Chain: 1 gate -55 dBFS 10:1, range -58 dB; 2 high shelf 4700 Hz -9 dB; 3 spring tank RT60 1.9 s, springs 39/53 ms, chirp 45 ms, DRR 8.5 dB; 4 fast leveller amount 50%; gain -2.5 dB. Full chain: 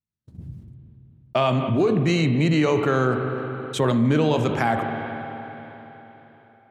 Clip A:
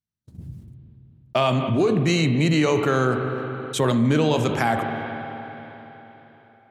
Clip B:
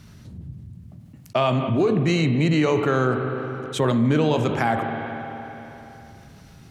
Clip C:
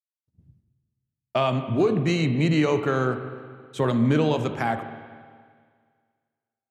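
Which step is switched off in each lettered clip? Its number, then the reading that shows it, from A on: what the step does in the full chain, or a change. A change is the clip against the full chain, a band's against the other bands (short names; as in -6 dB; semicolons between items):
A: 2, 8 kHz band +5.5 dB; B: 1, momentary loudness spread change +1 LU; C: 4, momentary loudness spread change -2 LU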